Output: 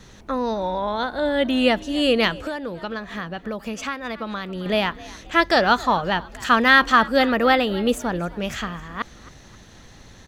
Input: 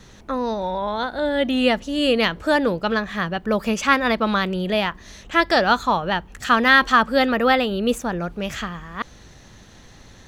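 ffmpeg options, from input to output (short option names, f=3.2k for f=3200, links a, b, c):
-filter_complex "[0:a]asplit=4[a][b][c][d];[b]adelay=266,afreqshift=55,volume=-20dB[e];[c]adelay=532,afreqshift=110,volume=-28dB[f];[d]adelay=798,afreqshift=165,volume=-35.9dB[g];[a][e][f][g]amix=inputs=4:normalize=0,asettb=1/sr,asplit=3[h][i][j];[h]atrim=end=2.454[k];[i]atrim=start=2.45:end=4.66,asetpts=PTS-STARTPTS,afade=t=in:d=0.004:c=qsin,afade=t=out:st=2.206:d=0.004:c=qsin,acompressor=threshold=-28dB:ratio=4[l];[j]atrim=start=4.656[m];[k][l]acrossfade=d=0.004:c1=hsin:c2=qsin[n];[n][m]acrossfade=d=0.004:c1=qsin:c2=hsin"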